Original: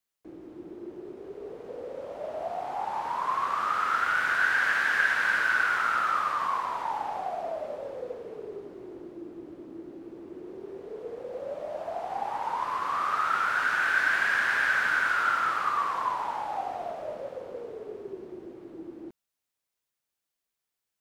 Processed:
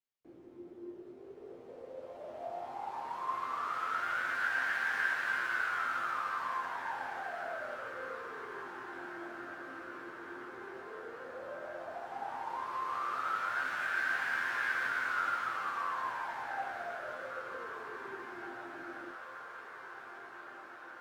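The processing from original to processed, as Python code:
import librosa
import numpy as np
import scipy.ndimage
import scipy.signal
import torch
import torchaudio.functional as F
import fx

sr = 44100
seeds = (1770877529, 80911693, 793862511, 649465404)

y = scipy.ndimage.median_filter(x, 5, mode='constant')
y = fx.resonator_bank(y, sr, root=41, chord='sus4', decay_s=0.23)
y = fx.echo_diffused(y, sr, ms=1979, feedback_pct=67, wet_db=-11)
y = y * librosa.db_to_amplitude(2.0)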